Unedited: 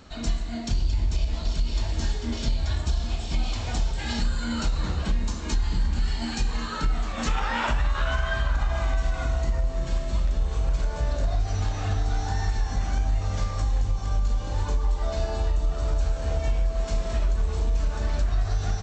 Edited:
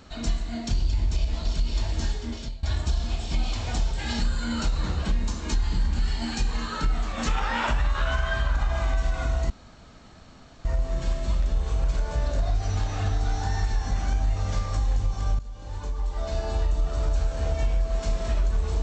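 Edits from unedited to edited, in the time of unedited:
1.85–2.63 s: fade out equal-power, to -20 dB
9.50 s: insert room tone 1.15 s
14.24–15.43 s: fade in, from -16.5 dB

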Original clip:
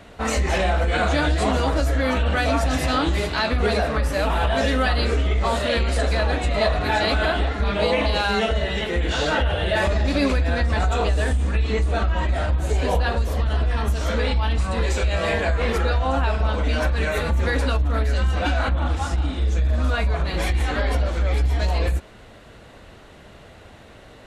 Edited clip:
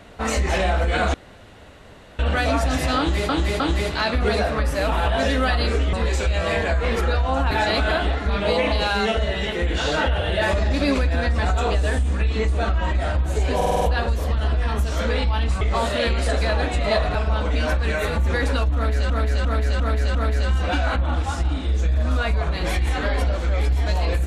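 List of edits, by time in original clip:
1.14–2.19 s: room tone
2.98–3.29 s: loop, 3 plays
5.31–6.85 s: swap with 14.70–16.28 s
12.90 s: stutter 0.05 s, 6 plays
17.88–18.23 s: loop, 5 plays

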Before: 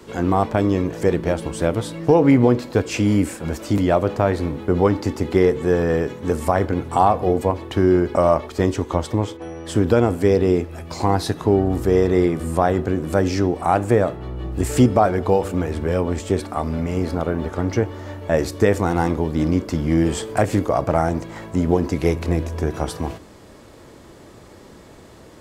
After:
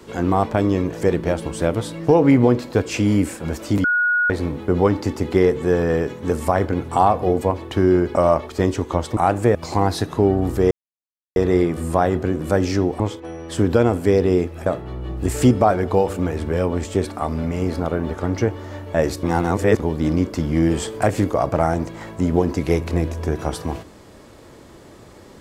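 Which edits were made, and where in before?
3.84–4.30 s: bleep 1.45 kHz -15 dBFS
9.17–10.83 s: swap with 13.63–14.01 s
11.99 s: insert silence 0.65 s
18.58–19.14 s: reverse

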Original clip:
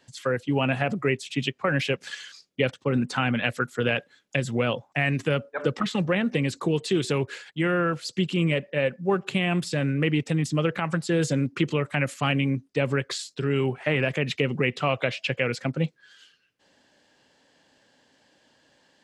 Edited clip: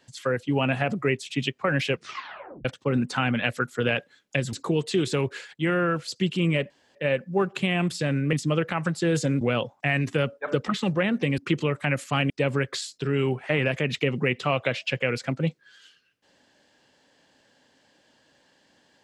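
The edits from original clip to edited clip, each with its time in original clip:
1.92 s: tape stop 0.73 s
4.53–6.50 s: move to 11.48 s
8.67 s: insert room tone 0.25 s
10.05–10.40 s: delete
12.40–12.67 s: delete

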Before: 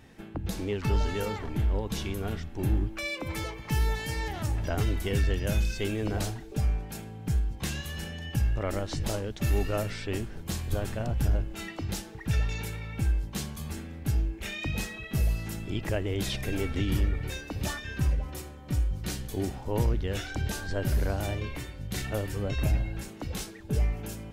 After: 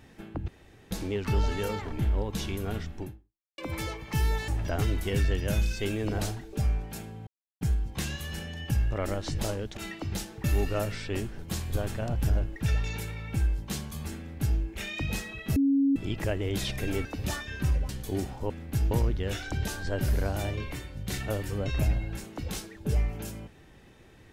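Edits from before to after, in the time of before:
0.48 s: insert room tone 0.43 s
2.58–3.15 s: fade out exponential
4.05–4.47 s: delete
7.26 s: insert silence 0.34 s
11.54–12.21 s: move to 9.42 s
13.83–14.24 s: copy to 19.75 s
15.21–15.61 s: bleep 276 Hz -20 dBFS
16.70–17.42 s: delete
18.26–19.14 s: delete

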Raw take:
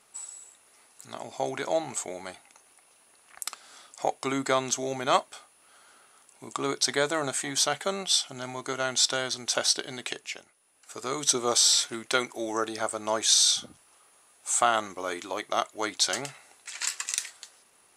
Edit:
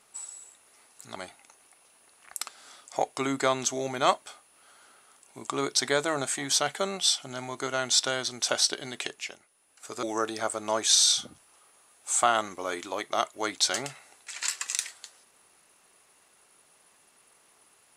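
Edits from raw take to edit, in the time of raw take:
1.16–2.22 s: delete
11.09–12.42 s: delete

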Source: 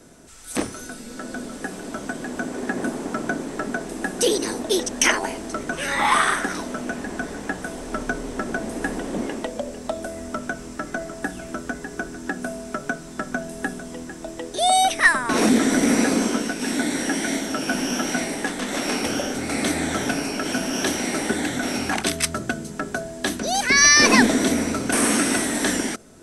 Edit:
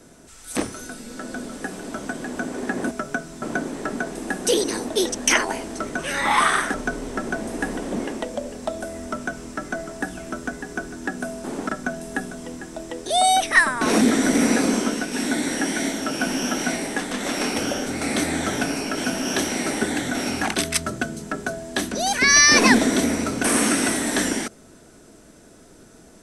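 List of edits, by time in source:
2.91–3.16 s: swap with 12.66–13.17 s
6.48–7.96 s: delete

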